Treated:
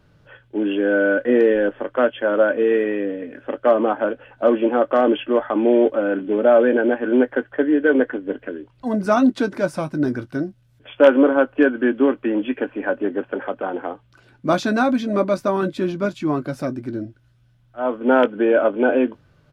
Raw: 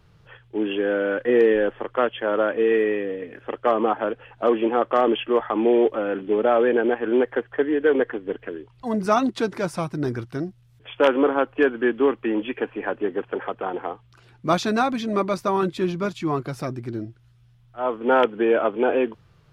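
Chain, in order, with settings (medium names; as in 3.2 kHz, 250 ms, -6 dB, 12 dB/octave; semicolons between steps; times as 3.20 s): doubling 20 ms -13.5 dB; small resonant body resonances 270/570/1500 Hz, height 10 dB, ringing for 35 ms; trim -1.5 dB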